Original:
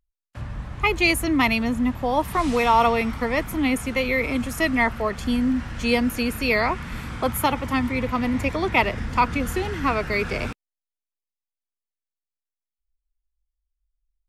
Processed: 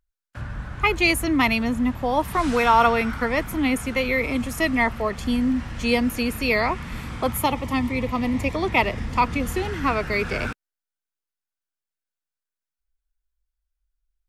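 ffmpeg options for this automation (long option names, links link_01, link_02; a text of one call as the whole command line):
ffmpeg -i in.wav -af "asetnsamples=nb_out_samples=441:pad=0,asendcmd='0.95 equalizer g 1.5;2.43 equalizer g 12;3.28 equalizer g 2.5;4.18 equalizer g -4;7.39 equalizer g -14;8.55 equalizer g -7.5;9.58 equalizer g 0.5;10.32 equalizer g 10',equalizer=frequency=1500:width_type=o:width=0.27:gain=10.5" out.wav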